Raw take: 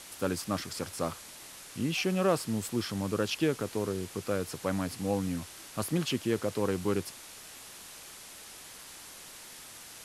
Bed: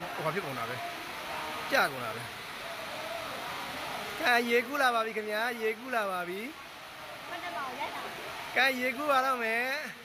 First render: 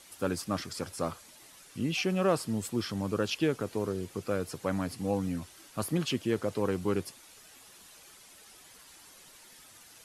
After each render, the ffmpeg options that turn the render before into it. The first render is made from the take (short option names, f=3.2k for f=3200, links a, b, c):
-af "afftdn=nr=9:nf=-48"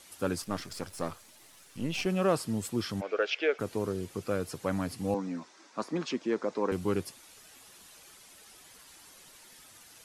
-filter_complex "[0:a]asettb=1/sr,asplit=3[a][b][c];[a]atrim=end=0.424[d];[b]atrim=start=0.42:end=2.06,asetpts=PTS-STARTPTS,afade=t=in:d=0.004:c=qsin,afade=t=out:st=1.636:d=0.004:c=qsin,aeval=exprs='if(lt(val(0),0),0.447*val(0),val(0))':c=same[e];[c]atrim=start=2.056[f];[d][e]acrossfade=d=0.004:c1=hsin:c2=qsin[g];[g][f]acrossfade=d=0.004:c1=qsin:c2=hsin,asplit=3[h][i][j];[h]afade=t=out:st=3:d=0.02[k];[i]highpass=f=420:w=0.5412,highpass=f=420:w=1.3066,equalizer=f=440:t=q:w=4:g=5,equalizer=f=650:t=q:w=4:g=6,equalizer=f=1k:t=q:w=4:g=-7,equalizer=f=1.5k:t=q:w=4:g=7,equalizer=f=2.2k:t=q:w=4:g=10,equalizer=f=4.3k:t=q:w=4:g=-5,lowpass=f=5k:w=0.5412,lowpass=f=5k:w=1.3066,afade=t=in:st=3:d=0.02,afade=t=out:st=3.58:d=0.02[l];[j]afade=t=in:st=3.58:d=0.02[m];[k][l][m]amix=inputs=3:normalize=0,asettb=1/sr,asplit=3[n][o][p];[n]atrim=end=5.144[q];[o]atrim=start=5.14:end=6.72,asetpts=PTS-STARTPTS,afade=t=in:d=0.004:c=qsin,afade=t=out:st=1.576:d=0.004:c=qsin,highpass=f=210:w=0.5412,highpass=f=210:w=1.3066,equalizer=f=980:t=q:w=4:g=5,equalizer=f=3k:t=q:w=4:g=-9,equalizer=f=4.4k:t=q:w=4:g=-3,lowpass=f=6.3k:w=0.5412,lowpass=f=6.3k:w=1.3066[r];[p]atrim=start=6.716[s];[q][r]acrossfade=d=0.004:c1=hsin:c2=qsin[t];[t][s]acrossfade=d=0.004:c1=qsin:c2=hsin"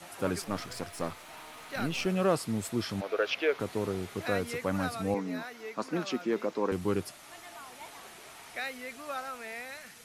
-filter_complex "[1:a]volume=-11dB[a];[0:a][a]amix=inputs=2:normalize=0"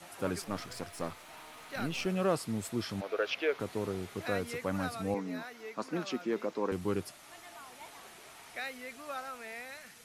-af "volume=-3dB"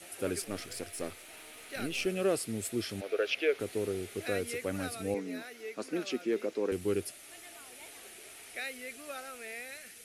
-af "equalizer=f=160:t=o:w=0.67:g=-8,equalizer=f=400:t=o:w=0.67:g=5,equalizer=f=1k:t=o:w=0.67:g=-12,equalizer=f=2.5k:t=o:w=0.67:g=4,equalizer=f=10k:t=o:w=0.67:g=9"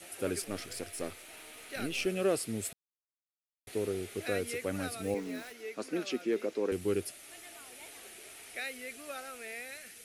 -filter_complex "[0:a]asettb=1/sr,asplit=3[a][b][c];[a]atrim=end=5.034[d];[b]atrim=start=5.03:end=5.52,asetpts=PTS-STARTPTS,afade=t=in:d=0.004:c=qsin,afade=t=out:st=0.486:d=0.004:c=qsin,aeval=exprs='val(0)*gte(abs(val(0)),0.00473)':c=same[e];[c]atrim=start=5.516[f];[d][e]acrossfade=d=0.004:c1=hsin:c2=qsin[g];[g][f]acrossfade=d=0.004:c1=qsin:c2=hsin,asplit=3[h][i][j];[h]atrim=end=2.73,asetpts=PTS-STARTPTS,afade=t=out:st=2.726:d=0.004:c=hsin[k];[i]atrim=start=2.73:end=3.67,asetpts=PTS-STARTPTS,volume=0[l];[j]atrim=start=3.67,asetpts=PTS-STARTPTS,afade=t=in:d=0.004:c=hsin[m];[k][l][m]concat=n=3:v=0:a=1"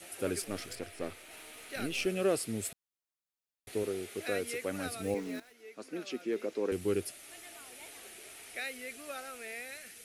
-filter_complex "[0:a]asettb=1/sr,asplit=3[a][b][c];[a]atrim=end=0.754[d];[b]atrim=start=0.75:end=1.31,asetpts=PTS-STARTPTS,afade=t=in:d=0.004:c=qsin,afade=t=out:st=0.556:d=0.004:c=qsin,acrossover=split=3800[e][f];[f]acompressor=threshold=-53dB:ratio=4:attack=1:release=60[g];[e][g]amix=inputs=2:normalize=0[h];[c]atrim=start=1.306[i];[d][h]acrossfade=d=0.004:c1=hsin:c2=qsin[j];[j][i]acrossfade=d=0.004:c1=qsin:c2=hsin,asettb=1/sr,asplit=3[k][l][m];[k]atrim=end=3.834[n];[l]atrim=start=3.83:end=4.86,asetpts=PTS-STARTPTS,afade=t=in:d=0.004:c=qsin,afade=t=out:st=1.026:d=0.004:c=qsin,highpass=f=200:p=1[o];[m]atrim=start=4.856[p];[n][o]acrossfade=d=0.004:c1=hsin:c2=qsin[q];[q][p]acrossfade=d=0.004:c1=qsin:c2=hsin,asplit=2[r][s];[r]atrim=end=5.4,asetpts=PTS-STARTPTS,afade=t=out:st=5.396:d=0.004:c=hsin:silence=0.211349[t];[s]atrim=start=5.4,asetpts=PTS-STARTPTS,afade=t=in:d=1.39:silence=0.211349[u];[t][u]concat=n=2:v=0:a=1"